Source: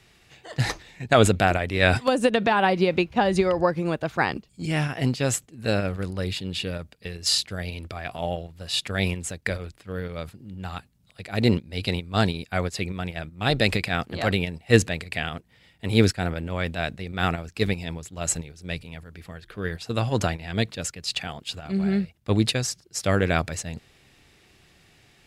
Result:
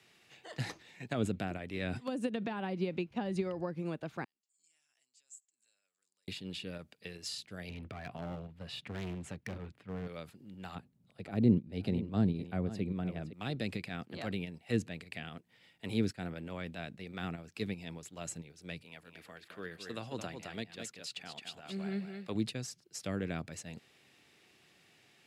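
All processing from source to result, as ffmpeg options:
ffmpeg -i in.wav -filter_complex "[0:a]asettb=1/sr,asplit=3[link_01][link_02][link_03];[link_01]atrim=end=4.244[link_04];[link_02]atrim=start=4.24:end=6.28,asetpts=PTS-STARTPTS,afade=type=in:duration=0.004:curve=qsin,afade=type=out:start_time=2.036:duration=0.004:curve=qsin,acompressor=threshold=-36dB:ratio=10:attack=3.2:release=140:knee=1:detection=peak,bandpass=frequency=7500:width_type=q:width=6.2[link_05];[link_03]atrim=start=6.276[link_06];[link_04][link_05]acrossfade=duration=0.004:curve1=hsin:curve2=qsin[link_07];[link_07][link_06]acrossfade=duration=0.004:curve1=qsin:curve2=hsin,asettb=1/sr,asplit=3[link_08][link_09][link_10];[link_08]atrim=end=7.694[link_11];[link_09]atrim=start=7.69:end=10.07,asetpts=PTS-STARTPTS,afade=type=in:duration=0.004:curve=qsin,afade=type=out:start_time=2.376:duration=0.004:curve=qsin,bass=frequency=250:gain=9,treble=frequency=4000:gain=-14,bandreject=frequency=340:width=8.4,asoftclip=type=hard:threshold=-23.5dB[link_12];[link_10]atrim=start=10.066[link_13];[link_11][link_12]acrossfade=duration=0.004:curve1=hsin:curve2=qsin[link_14];[link_14][link_13]acrossfade=duration=0.004:curve1=qsin:curve2=hsin,asettb=1/sr,asplit=3[link_15][link_16][link_17];[link_15]atrim=end=10.754[link_18];[link_16]atrim=start=10.75:end=13.33,asetpts=PTS-STARTPTS,afade=type=in:duration=0.004:curve=qsin,afade=type=out:start_time=2.576:duration=0.004:curve=qsin,tiltshelf=frequency=840:gain=8.5,aecho=1:1:511:0.168,atrim=end_sample=113778[link_19];[link_17]atrim=start=13.326[link_20];[link_18][link_19]acrossfade=duration=0.004:curve1=hsin:curve2=qsin[link_21];[link_21][link_20]acrossfade=duration=0.004:curve1=qsin:curve2=hsin,asettb=1/sr,asplit=3[link_22][link_23][link_24];[link_22]atrim=end=18.834[link_25];[link_23]atrim=start=18.83:end=22.35,asetpts=PTS-STARTPTS,afade=type=in:duration=0.004:curve=qsin,afade=type=out:start_time=3.516:duration=0.004:curve=qsin,lowshelf=frequency=230:gain=-9.5,aecho=1:1:216:0.398,atrim=end_sample=155232[link_26];[link_24]atrim=start=22.346[link_27];[link_25][link_26]acrossfade=duration=0.004:curve1=hsin:curve2=qsin[link_28];[link_28][link_27]acrossfade=duration=0.004:curve1=qsin:curve2=hsin,highpass=170,equalizer=frequency=2700:width_type=o:width=0.77:gain=2,acrossover=split=310[link_29][link_30];[link_30]acompressor=threshold=-36dB:ratio=3[link_31];[link_29][link_31]amix=inputs=2:normalize=0,volume=-7.5dB" out.wav

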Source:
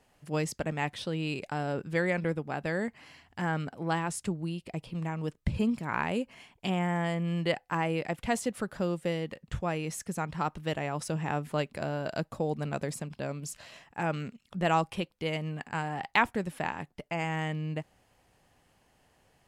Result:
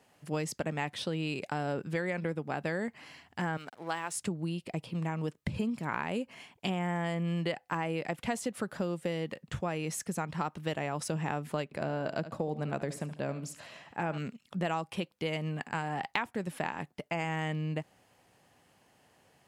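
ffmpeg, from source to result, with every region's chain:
ffmpeg -i in.wav -filter_complex "[0:a]asettb=1/sr,asplit=3[link_01][link_02][link_03];[link_01]atrim=end=3.574[link_04];[link_02]atrim=start=3.57:end=4.16,asetpts=PTS-STARTPTS,afade=type=in:duration=0.004:curve=qsin,afade=type=out:start_time=0.586:duration=0.004:curve=qsin,highpass=frequency=760:poles=1,aeval=exprs='sgn(val(0))*max(abs(val(0))-0.0015,0)':channel_layout=same[link_05];[link_03]atrim=start=4.156[link_06];[link_04][link_05]acrossfade=duration=0.004:curve1=hsin:curve2=qsin[link_07];[link_07][link_06]acrossfade=duration=0.004:curve1=qsin:curve2=hsin,asettb=1/sr,asplit=3[link_08][link_09][link_10];[link_08]atrim=end=11.644[link_11];[link_09]atrim=start=11.64:end=14.18,asetpts=PTS-STARTPTS,afade=type=in:duration=0.004:curve=qsin,afade=type=out:start_time=2.536:duration=0.004:curve=qsin,aecho=1:1:73|146|219:0.2|0.0638|0.0204,atrim=end_sample=112014,acompressor=mode=upward:threshold=-45dB:ratio=2.5:attack=3.2:release=140:knee=2.83:detection=peak,highshelf=frequency=3900:gain=-8[link_12];[link_10]atrim=start=14.176[link_13];[link_11][link_12]acrossfade=duration=0.004:curve1=hsin:curve2=qsin[link_14];[link_14][link_13]acrossfade=duration=0.004:curve1=qsin:curve2=hsin,highpass=110,acompressor=threshold=-31dB:ratio=6,volume=2dB" out.wav

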